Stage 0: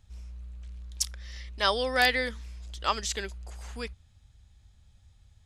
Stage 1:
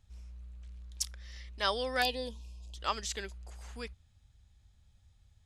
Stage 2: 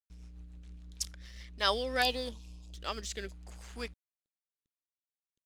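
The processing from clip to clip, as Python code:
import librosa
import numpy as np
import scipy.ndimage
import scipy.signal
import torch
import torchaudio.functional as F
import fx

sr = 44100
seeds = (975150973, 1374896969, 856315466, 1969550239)

y1 = fx.spec_box(x, sr, start_s=2.03, length_s=0.73, low_hz=1100.0, high_hz=2400.0, gain_db=-24)
y1 = F.gain(torch.from_numpy(y1), -5.5).numpy()
y2 = np.sign(y1) * np.maximum(np.abs(y1) - 10.0 ** (-53.0 / 20.0), 0.0)
y2 = fx.rotary_switch(y2, sr, hz=7.0, then_hz=0.7, switch_at_s=1.11)
y2 = F.gain(torch.from_numpy(y2), 4.0).numpy()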